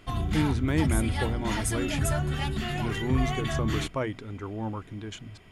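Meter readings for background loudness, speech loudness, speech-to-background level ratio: -30.0 LUFS, -32.0 LUFS, -2.0 dB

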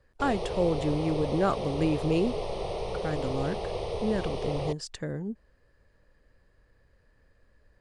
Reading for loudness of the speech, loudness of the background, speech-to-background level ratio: -30.5 LUFS, -34.0 LUFS, 3.5 dB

